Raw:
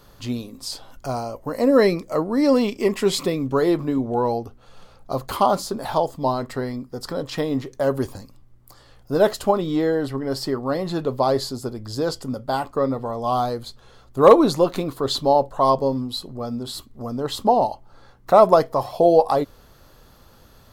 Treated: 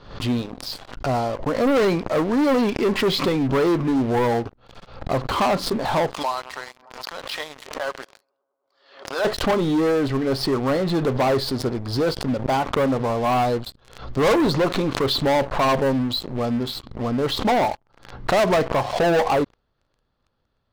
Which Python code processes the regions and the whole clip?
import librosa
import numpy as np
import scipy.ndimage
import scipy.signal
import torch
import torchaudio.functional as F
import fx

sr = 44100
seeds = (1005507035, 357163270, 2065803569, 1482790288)

y = fx.chain(x, sr, fx.highpass(hz=1200.0, slope=12),
    fx.echo_bbd(ms=102, stages=1024, feedback_pct=85, wet_db=-18.0),
    fx.pre_swell(db_per_s=130.0), at=(6.14, 9.25))
y = scipy.signal.sosfilt(scipy.signal.butter(4, 4400.0, 'lowpass', fs=sr, output='sos'), y)
y = fx.leveller(y, sr, passes=5)
y = fx.pre_swell(y, sr, db_per_s=100.0)
y = y * 10.0 ** (-12.5 / 20.0)